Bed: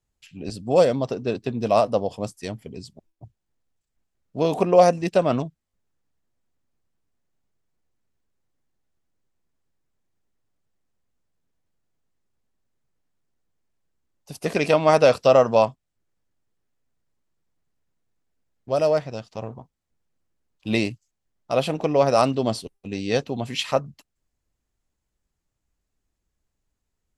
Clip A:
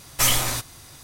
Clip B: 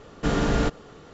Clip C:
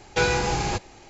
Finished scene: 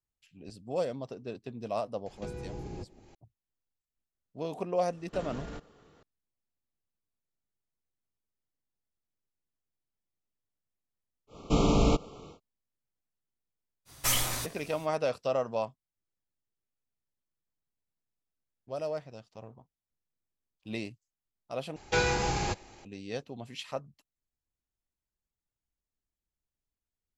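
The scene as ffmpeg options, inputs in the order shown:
-filter_complex "[3:a]asplit=2[s0][s1];[2:a]asplit=2[s2][s3];[0:a]volume=0.188[s4];[s0]acrossover=split=210|450[s5][s6][s7];[s5]acompressor=threshold=0.0141:ratio=4[s8];[s6]acompressor=threshold=0.0141:ratio=4[s9];[s7]acompressor=threshold=0.00178:ratio=4[s10];[s8][s9][s10]amix=inputs=3:normalize=0[s11];[s2]alimiter=limit=0.1:level=0:latency=1:release=34[s12];[s3]asuperstop=centerf=1700:order=20:qfactor=2.1[s13];[s4]asplit=2[s14][s15];[s14]atrim=end=21.764[s16];[s1]atrim=end=1.09,asetpts=PTS-STARTPTS,volume=0.562[s17];[s15]atrim=start=22.846[s18];[s11]atrim=end=1.09,asetpts=PTS-STARTPTS,volume=0.562,afade=t=in:d=0.004:c=hsin,afade=t=out:st=1.086:d=0.004:c=hsin,adelay=2060[s19];[s12]atrim=end=1.13,asetpts=PTS-STARTPTS,volume=0.211,afade=t=in:d=0.004:c=hsin,afade=t=out:st=1.126:d=0.004:c=hsin,adelay=4900[s20];[s13]atrim=end=1.13,asetpts=PTS-STARTPTS,volume=0.891,afade=t=in:d=0.1,afade=t=out:st=1.03:d=0.1,adelay=11270[s21];[1:a]atrim=end=1.03,asetpts=PTS-STARTPTS,volume=0.398,afade=t=in:d=0.05,afade=t=out:st=0.98:d=0.05,adelay=13850[s22];[s16][s17]acrossfade=d=0.004:c1=hsin:c2=hsin[s23];[s23][s18]acrossfade=d=0.004:c1=hsin:c2=hsin[s24];[s24][s19][s20][s21][s22]amix=inputs=5:normalize=0"

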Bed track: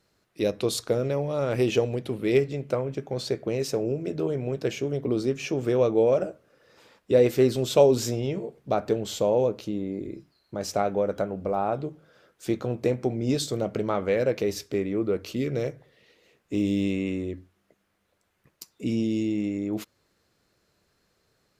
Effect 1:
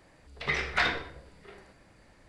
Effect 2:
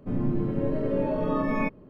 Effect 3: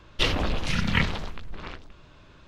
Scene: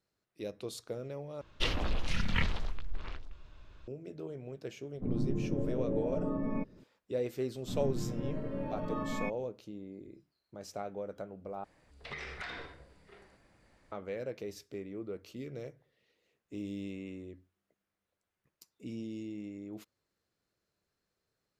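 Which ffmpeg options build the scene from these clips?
-filter_complex "[2:a]asplit=2[s0][s1];[0:a]volume=0.178[s2];[3:a]asubboost=boost=6.5:cutoff=74[s3];[s0]tiltshelf=f=1100:g=9.5[s4];[s1]equalizer=f=420:w=1.5:g=-8[s5];[1:a]acompressor=threshold=0.0282:ratio=6:attack=3.2:release=140:knee=1:detection=peak[s6];[s2]asplit=3[s7][s8][s9];[s7]atrim=end=1.414[s10];[s3]atrim=end=2.47,asetpts=PTS-STARTPTS,volume=0.376[s11];[s8]atrim=start=3.876:end=11.644[s12];[s6]atrim=end=2.28,asetpts=PTS-STARTPTS,volume=0.447[s13];[s9]atrim=start=13.916[s14];[s4]atrim=end=1.89,asetpts=PTS-STARTPTS,volume=0.178,afade=t=in:d=0.004:c=hsin,afade=t=out:st=1.886:d=0.004:c=hsin,adelay=4950[s15];[s5]atrim=end=1.89,asetpts=PTS-STARTPTS,volume=0.398,afade=t=in:d=0.004:c=hsin,afade=t=out:st=1.886:d=0.004:c=hsin,adelay=7610[s16];[s10][s11]acrossfade=d=0.004:c1=hsin:c2=hsin[s17];[s17][s12]acrossfade=d=0.004:c1=hsin:c2=hsin[s18];[s18][s13]acrossfade=d=0.004:c1=hsin:c2=hsin[s19];[s19][s14]acrossfade=d=0.004:c1=hsin:c2=hsin[s20];[s20][s15][s16]amix=inputs=3:normalize=0"

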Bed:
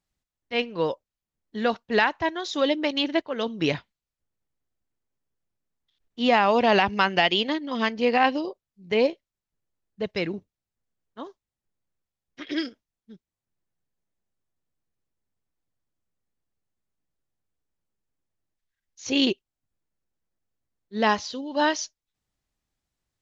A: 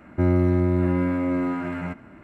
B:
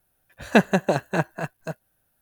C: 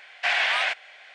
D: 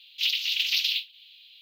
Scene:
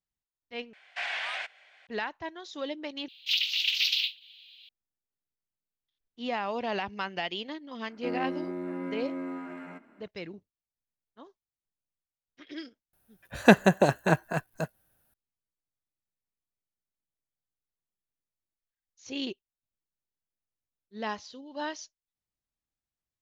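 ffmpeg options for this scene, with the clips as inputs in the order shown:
-filter_complex "[0:a]volume=0.237[s0];[4:a]highshelf=f=8500:g=-7.5[s1];[1:a]highpass=f=220:w=0.5412,highpass=f=220:w=1.3066[s2];[s0]asplit=3[s3][s4][s5];[s3]atrim=end=0.734[s6];[3:a]atrim=end=1.14,asetpts=PTS-STARTPTS,volume=0.299[s7];[s4]atrim=start=1.866:end=3.084[s8];[s1]atrim=end=1.61,asetpts=PTS-STARTPTS,volume=0.944[s9];[s5]atrim=start=4.686[s10];[s2]atrim=end=2.23,asetpts=PTS-STARTPTS,volume=0.282,afade=t=in:d=0.004:c=hsin,afade=t=out:st=2.226:d=0.004:c=hsin,adelay=7850[s11];[2:a]atrim=end=2.21,asetpts=PTS-STARTPTS,volume=0.944,afade=t=in:d=0.004:c=hsin,afade=t=out:st=2.206:d=0.004:c=hsin,adelay=12930[s12];[s6][s7]acrossfade=d=0.004:c1=hsin:c2=hsin[s13];[s13][s8]acrossfade=d=0.004:c1=hsin:c2=hsin[s14];[s14][s9]acrossfade=d=0.004:c1=hsin:c2=hsin[s15];[s15][s10]acrossfade=d=0.004:c1=hsin:c2=hsin[s16];[s16][s11][s12]amix=inputs=3:normalize=0"

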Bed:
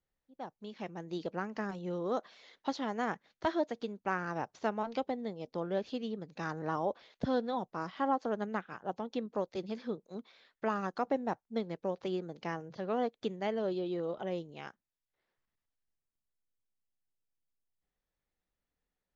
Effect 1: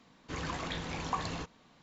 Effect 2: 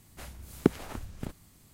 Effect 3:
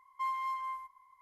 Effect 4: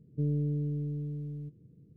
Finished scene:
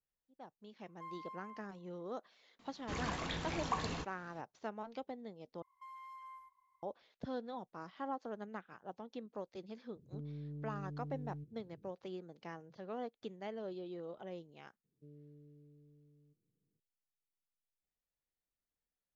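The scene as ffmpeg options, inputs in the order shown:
-filter_complex "[3:a]asplit=2[s0][s1];[4:a]asplit=2[s2][s3];[0:a]volume=0.316[s4];[s0]highshelf=f=4900:g=-8.5[s5];[s1]alimiter=level_in=3.35:limit=0.0631:level=0:latency=1:release=71,volume=0.299[s6];[s2]acompressor=threshold=0.0158:ratio=6:attack=3.2:release=140:knee=1:detection=peak[s7];[s3]highpass=f=520:p=1[s8];[s4]asplit=2[s9][s10];[s9]atrim=end=5.624[s11];[s6]atrim=end=1.21,asetpts=PTS-STARTPTS,volume=0.237[s12];[s10]atrim=start=6.826[s13];[s5]atrim=end=1.21,asetpts=PTS-STARTPTS,volume=0.188,afade=t=in:d=0.004:c=hsin,afade=t=out:st=1.206:d=0.004:c=hsin,adelay=810[s14];[1:a]atrim=end=1.82,asetpts=PTS-STARTPTS,volume=0.75,afade=t=in:d=0.004:c=hsin,afade=t=out:st=1.816:d=0.004:c=hsin,adelay=2590[s15];[s7]atrim=end=1.96,asetpts=PTS-STARTPTS,volume=0.501,afade=t=in:d=0.004:c=hsin,afade=t=out:st=1.956:d=0.004:c=hsin,adelay=9950[s16];[s8]atrim=end=1.96,asetpts=PTS-STARTPTS,volume=0.126,afade=t=in:d=0.004:c=hsin,afade=t=out:st=1.956:d=0.004:c=hsin,adelay=14840[s17];[s11][s12]acrossfade=d=0.004:c1=hsin:c2=hsin[s18];[s18][s13]acrossfade=d=0.004:c1=hsin:c2=hsin[s19];[s19][s14][s15][s16][s17]amix=inputs=5:normalize=0"

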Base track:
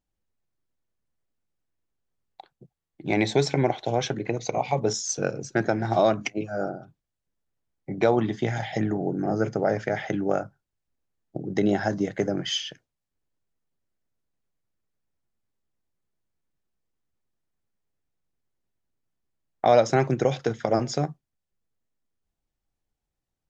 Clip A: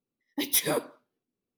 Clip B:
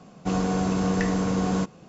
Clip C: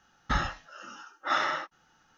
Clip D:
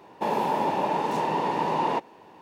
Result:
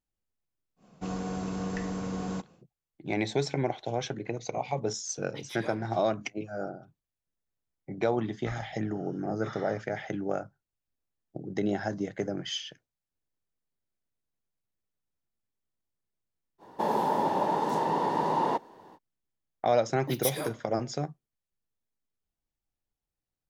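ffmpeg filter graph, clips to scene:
-filter_complex "[1:a]asplit=2[s0][s1];[0:a]volume=0.473[s2];[s0]highpass=540,lowpass=3700[s3];[3:a]asuperstop=centerf=2700:order=4:qfactor=6.3[s4];[4:a]equalizer=f=2500:w=3.2:g=-12[s5];[2:a]atrim=end=1.88,asetpts=PTS-STARTPTS,volume=0.335,afade=t=in:d=0.1,afade=t=out:st=1.78:d=0.1,adelay=760[s6];[s3]atrim=end=1.57,asetpts=PTS-STARTPTS,volume=0.316,afade=t=in:d=0.004:c=hsin,afade=t=out:st=1.566:d=0.004:c=hsin,adelay=4960[s7];[s4]atrim=end=2.17,asetpts=PTS-STARTPTS,volume=0.141,afade=t=in:d=0.004:c=hsin,afade=t=out:st=2.166:d=0.004:c=hsin,adelay=8160[s8];[s5]atrim=end=2.41,asetpts=PTS-STARTPTS,volume=0.841,afade=t=in:d=0.05,afade=t=out:st=2.36:d=0.05,adelay=16580[s9];[s1]atrim=end=1.57,asetpts=PTS-STARTPTS,volume=0.447,afade=t=in:d=0.004:c=hsin,afade=t=out:st=1.566:d=0.004:c=hsin,adelay=19700[s10];[s2][s6][s7][s8][s9][s10]amix=inputs=6:normalize=0"

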